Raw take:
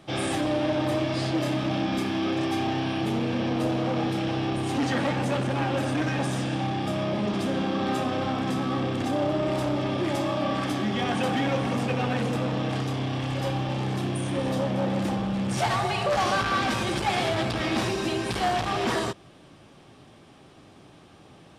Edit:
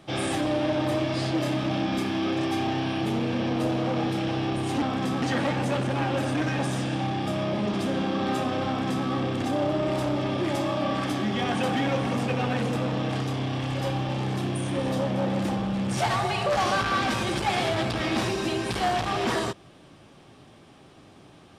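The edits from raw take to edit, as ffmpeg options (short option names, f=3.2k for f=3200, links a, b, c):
-filter_complex "[0:a]asplit=3[a][b][c];[a]atrim=end=4.822[d];[b]atrim=start=8.268:end=8.672[e];[c]atrim=start=4.818[f];[d][e]acrossfade=d=0.004:c1=hsin:c2=hsin[g];[g][f]acrossfade=d=0.004:c1=hsin:c2=hsin"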